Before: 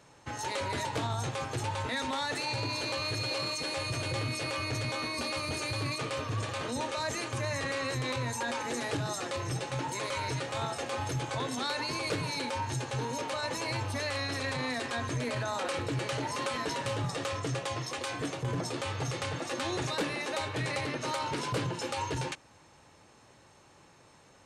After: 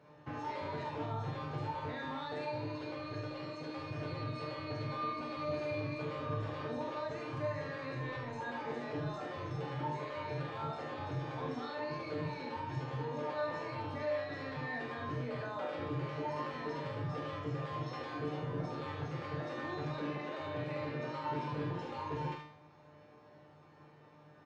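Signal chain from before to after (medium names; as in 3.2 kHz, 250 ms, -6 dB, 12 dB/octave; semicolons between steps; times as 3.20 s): high-pass 95 Hz; peaking EQ 4.9 kHz +3 dB 0.4 oct; peak limiter -29.5 dBFS, peak gain reduction 9.5 dB; tape spacing loss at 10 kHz 39 dB; feedback comb 150 Hz, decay 0.59 s, harmonics all, mix 90%; early reflections 45 ms -6 dB, 75 ms -5.5 dB; trim +14 dB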